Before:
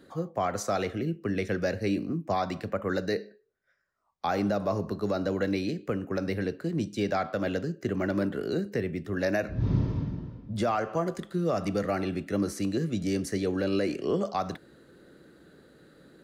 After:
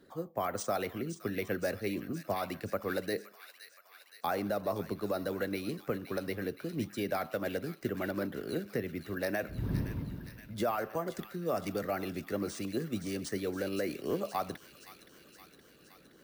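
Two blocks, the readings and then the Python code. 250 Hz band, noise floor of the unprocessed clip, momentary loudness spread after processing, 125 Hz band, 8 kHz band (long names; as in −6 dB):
−7.0 dB, −66 dBFS, 12 LU, −8.5 dB, −2.5 dB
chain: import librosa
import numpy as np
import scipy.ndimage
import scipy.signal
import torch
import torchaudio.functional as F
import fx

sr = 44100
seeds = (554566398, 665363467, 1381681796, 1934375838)

y = fx.hpss(x, sr, part='harmonic', gain_db=-8)
y = np.repeat(y[::3], 3)[:len(y)]
y = fx.echo_wet_highpass(y, sr, ms=519, feedback_pct=66, hz=2000.0, wet_db=-9.0)
y = y * 10.0 ** (-2.5 / 20.0)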